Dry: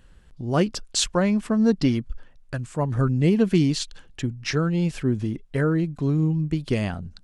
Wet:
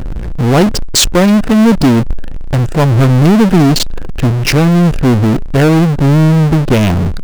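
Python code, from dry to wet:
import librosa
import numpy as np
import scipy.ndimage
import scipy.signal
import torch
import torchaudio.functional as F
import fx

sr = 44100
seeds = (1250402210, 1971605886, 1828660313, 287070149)

y = fx.wiener(x, sr, points=41)
y = fx.power_curve(y, sr, exponent=0.35)
y = y * librosa.db_to_amplitude(5.0)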